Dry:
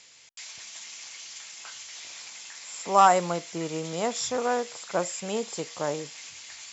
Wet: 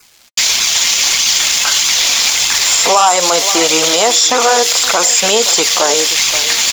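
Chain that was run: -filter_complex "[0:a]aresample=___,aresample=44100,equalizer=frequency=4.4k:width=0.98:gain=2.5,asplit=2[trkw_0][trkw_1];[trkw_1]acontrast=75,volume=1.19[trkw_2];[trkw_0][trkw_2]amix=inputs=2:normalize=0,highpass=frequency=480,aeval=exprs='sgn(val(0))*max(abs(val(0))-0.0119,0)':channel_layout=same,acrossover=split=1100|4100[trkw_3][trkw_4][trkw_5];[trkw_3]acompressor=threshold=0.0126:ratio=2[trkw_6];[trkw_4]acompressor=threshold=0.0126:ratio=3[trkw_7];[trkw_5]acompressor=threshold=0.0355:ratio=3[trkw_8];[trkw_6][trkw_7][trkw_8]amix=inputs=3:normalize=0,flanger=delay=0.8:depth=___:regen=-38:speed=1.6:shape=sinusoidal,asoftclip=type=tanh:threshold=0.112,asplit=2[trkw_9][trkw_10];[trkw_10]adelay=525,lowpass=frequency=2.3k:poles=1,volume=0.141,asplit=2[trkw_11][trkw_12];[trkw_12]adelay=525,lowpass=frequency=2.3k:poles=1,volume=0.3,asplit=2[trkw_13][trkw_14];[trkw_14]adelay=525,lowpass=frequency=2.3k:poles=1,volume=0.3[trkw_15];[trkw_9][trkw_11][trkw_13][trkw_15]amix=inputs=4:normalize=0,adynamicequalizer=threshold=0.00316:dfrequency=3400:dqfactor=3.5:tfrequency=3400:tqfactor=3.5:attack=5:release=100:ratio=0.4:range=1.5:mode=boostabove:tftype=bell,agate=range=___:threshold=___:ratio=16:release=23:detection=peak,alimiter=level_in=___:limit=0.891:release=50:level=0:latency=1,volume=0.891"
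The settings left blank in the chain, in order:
16000, 3.7, 0.178, 0.00282, 23.7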